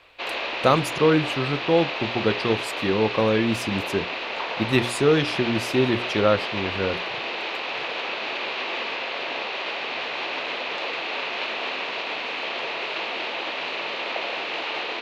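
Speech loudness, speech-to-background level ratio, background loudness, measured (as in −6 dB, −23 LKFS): −23.5 LKFS, 4.5 dB, −28.0 LKFS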